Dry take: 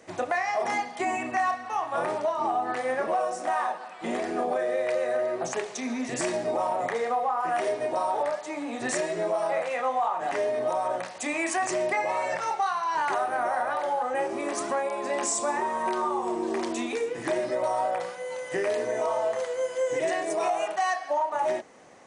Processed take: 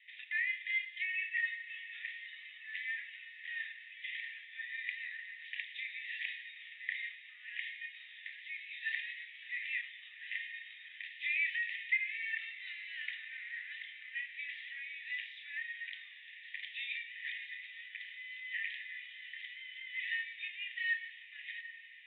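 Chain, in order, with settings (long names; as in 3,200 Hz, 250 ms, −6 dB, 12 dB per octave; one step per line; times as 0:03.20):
Chebyshev band-pass filter 1,800–3,700 Hz, order 5
feedback delay with all-pass diffusion 773 ms, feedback 73%, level −15 dB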